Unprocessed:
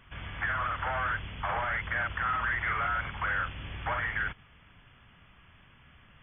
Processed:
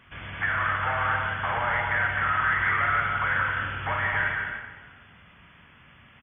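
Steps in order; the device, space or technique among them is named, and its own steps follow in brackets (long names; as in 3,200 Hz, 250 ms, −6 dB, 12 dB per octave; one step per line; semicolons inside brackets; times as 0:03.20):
stadium PA (high-pass filter 160 Hz 6 dB per octave; parametric band 1,900 Hz +4 dB 1.3 octaves; loudspeakers that aren't time-aligned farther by 60 metres −6 dB, 91 metres −8 dB; convolution reverb RT60 1.6 s, pre-delay 15 ms, DRR 3.5 dB)
low-shelf EQ 460 Hz +5 dB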